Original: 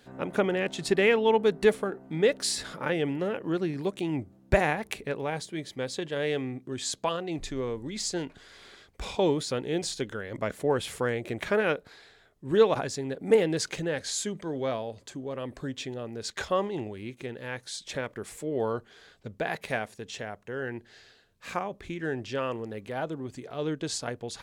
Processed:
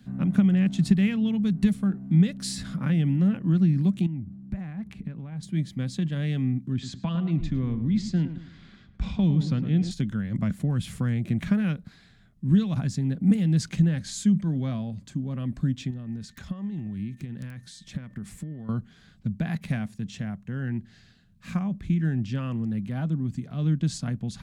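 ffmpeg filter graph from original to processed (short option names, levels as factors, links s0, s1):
-filter_complex "[0:a]asettb=1/sr,asplit=3[s0][s1][s2];[s0]atrim=end=4.064[s3];[s1]atrim=start=4.06:end=5.43,asetpts=PTS-STARTPTS,afade=t=in:d=0.004:c=qsin,afade=t=out:st=1.366:d=0.004:c=qsin,lowpass=f=2500:p=1,acompressor=threshold=0.00891:ratio=4:attack=3.2:release=140:knee=1:detection=peak[s4];[s2]atrim=start=5.426[s5];[s3][s4]acrossfade=d=0.004:c1=hsin:c2=qsin[s6];[s6][s5]acrossfade=d=0.004:c1=qsin:c2=hsin,asettb=1/sr,asplit=3[s7][s8][s9];[s7]atrim=end=6.724[s10];[s8]atrim=start=6.72:end=9.91,asetpts=PTS-STARTPTS,afade=t=in:d=0.004:c=qsin,afade=t=out:st=3.186:d=0.004:c=qsin,lowpass=4300,asplit=2[s11][s12];[s12]adelay=107,lowpass=f=1800:p=1,volume=0.299,asplit=2[s13][s14];[s14]adelay=107,lowpass=f=1800:p=1,volume=0.37,asplit=2[s15][s16];[s16]adelay=107,lowpass=f=1800:p=1,volume=0.37,asplit=2[s17][s18];[s18]adelay=107,lowpass=f=1800:p=1,volume=0.37[s19];[s11][s13][s15][s17][s19]amix=inputs=5:normalize=0,atrim=end_sample=140679[s20];[s9]atrim=start=9.906[s21];[s10][s20]acrossfade=d=0.004:c1=hsin:c2=qsin[s22];[s22][s21]acrossfade=d=0.004:c1=qsin:c2=hsin,asettb=1/sr,asplit=3[s23][s24][s25];[s23]atrim=end=15.904[s26];[s24]atrim=start=15.9:end=18.69,asetpts=PTS-STARTPTS,afade=t=in:d=0.004:c=qsin,afade=t=out:st=2.786:d=0.004:c=qsin,acompressor=threshold=0.0126:ratio=8:attack=3.2:release=140:knee=1:detection=peak,aeval=exprs='(mod(29.9*val(0)+1,2)-1)/29.9':c=same,aeval=exprs='val(0)+0.000891*sin(2*PI*1800*n/s)':c=same[s27];[s25]atrim=start=18.686[s28];[s26][s27]acrossfade=d=0.004:c1=hsin:c2=qsin[s29];[s29][s28]acrossfade=d=0.004:c1=qsin:c2=hsin,acrossover=split=150|3000[s30][s31][s32];[s31]acompressor=threshold=0.0447:ratio=6[s33];[s30][s33][s32]amix=inputs=3:normalize=0,lowshelf=f=290:t=q:w=3:g=14,bandreject=f=890:w=12,volume=0.631"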